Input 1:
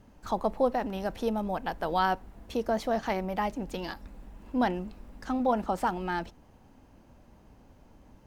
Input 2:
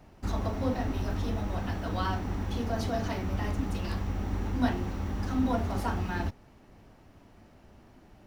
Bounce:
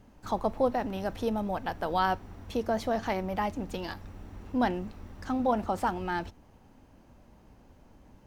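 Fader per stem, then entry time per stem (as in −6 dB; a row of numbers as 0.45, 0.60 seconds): −0.5, −14.0 decibels; 0.00, 0.00 seconds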